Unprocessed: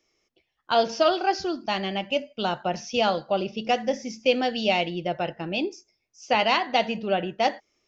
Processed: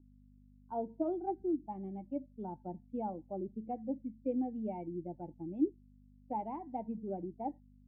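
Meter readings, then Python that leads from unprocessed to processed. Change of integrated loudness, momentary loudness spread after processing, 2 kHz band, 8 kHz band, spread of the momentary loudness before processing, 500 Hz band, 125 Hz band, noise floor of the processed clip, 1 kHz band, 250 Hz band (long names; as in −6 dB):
−14.0 dB, 8 LU, below −40 dB, can't be measured, 7 LU, −15.5 dB, −10.5 dB, −61 dBFS, −16.5 dB, −6.0 dB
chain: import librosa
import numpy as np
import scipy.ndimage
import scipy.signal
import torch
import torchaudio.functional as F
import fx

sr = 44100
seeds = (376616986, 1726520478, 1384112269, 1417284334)

y = fx.bin_expand(x, sr, power=1.5)
y = fx.add_hum(y, sr, base_hz=50, snr_db=21)
y = fx.formant_cascade(y, sr, vowel='u')
y = F.gain(torch.from_numpy(y), 2.0).numpy()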